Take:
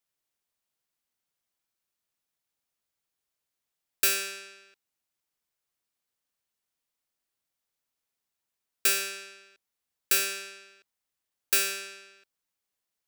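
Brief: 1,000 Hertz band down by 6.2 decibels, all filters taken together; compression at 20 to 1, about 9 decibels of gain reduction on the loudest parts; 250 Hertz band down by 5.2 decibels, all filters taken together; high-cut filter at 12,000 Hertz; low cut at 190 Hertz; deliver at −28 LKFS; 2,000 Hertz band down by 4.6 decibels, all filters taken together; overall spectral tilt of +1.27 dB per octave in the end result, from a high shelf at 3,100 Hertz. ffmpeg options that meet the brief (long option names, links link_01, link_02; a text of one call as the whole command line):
ffmpeg -i in.wav -af "highpass=190,lowpass=12000,equalizer=frequency=250:width_type=o:gain=-9,equalizer=frequency=1000:width_type=o:gain=-7.5,equalizer=frequency=2000:width_type=o:gain=-3,highshelf=frequency=3100:gain=-3,acompressor=threshold=-33dB:ratio=20,volume=11dB" out.wav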